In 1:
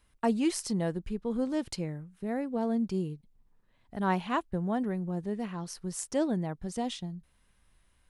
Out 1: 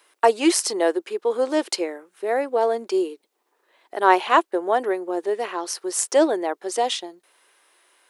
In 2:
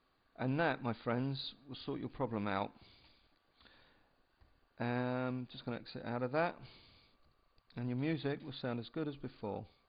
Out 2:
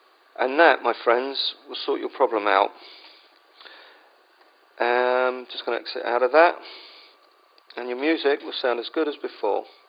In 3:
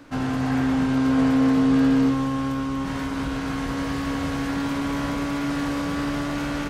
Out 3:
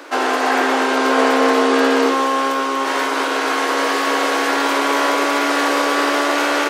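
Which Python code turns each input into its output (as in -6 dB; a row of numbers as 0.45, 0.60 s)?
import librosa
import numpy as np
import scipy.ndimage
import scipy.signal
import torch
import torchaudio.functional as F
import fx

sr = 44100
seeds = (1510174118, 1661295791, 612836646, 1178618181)

y = scipy.signal.sosfilt(scipy.signal.ellip(4, 1.0, 60, 350.0, 'highpass', fs=sr, output='sos'), x)
y = y * 10.0 ** (-2 / 20.0) / np.max(np.abs(y))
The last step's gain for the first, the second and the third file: +14.5, +19.5, +15.0 dB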